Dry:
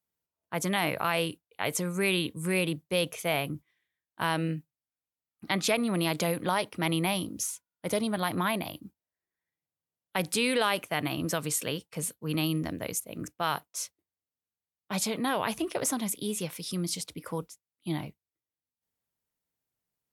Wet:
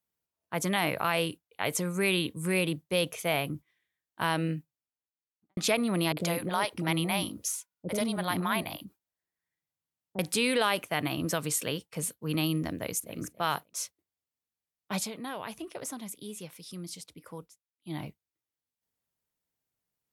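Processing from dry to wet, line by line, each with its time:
4.56–5.57 s: studio fade out
6.12–10.19 s: bands offset in time lows, highs 50 ms, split 500 Hz
12.75–13.17 s: echo throw 280 ms, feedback 20%, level -16 dB
14.94–18.05 s: dip -9 dB, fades 0.17 s

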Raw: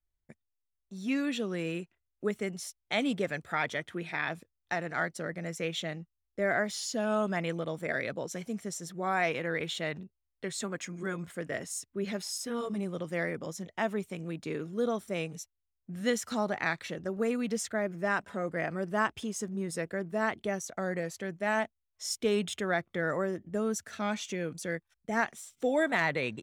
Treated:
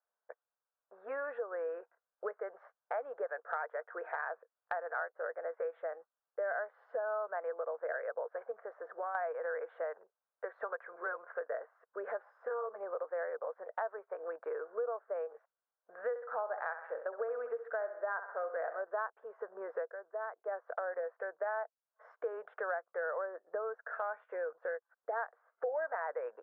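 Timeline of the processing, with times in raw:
8.51–9.15 s: compression, threshold -35 dBFS
16.09–18.82 s: feedback delay 65 ms, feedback 47%, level -11 dB
19.84–20.57 s: dip -12.5 dB, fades 0.12 s
whole clip: Chebyshev band-pass 470–1600 Hz, order 4; compression 4:1, threshold -48 dBFS; trim +11 dB

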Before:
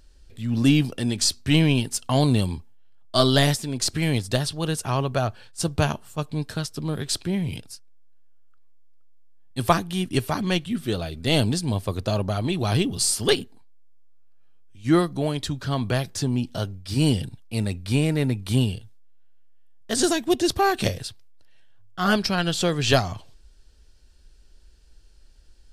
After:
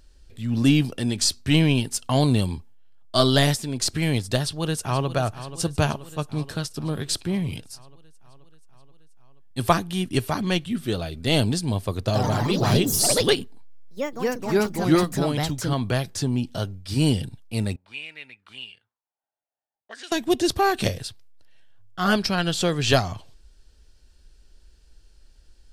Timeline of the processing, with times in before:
4.41–5.09 s: echo throw 480 ms, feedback 70%, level -13 dB
11.98–16.33 s: ever faster or slower copies 95 ms, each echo +3 st, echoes 3
17.76–20.12 s: auto-wah 720–2600 Hz, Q 3.9, up, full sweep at -18 dBFS

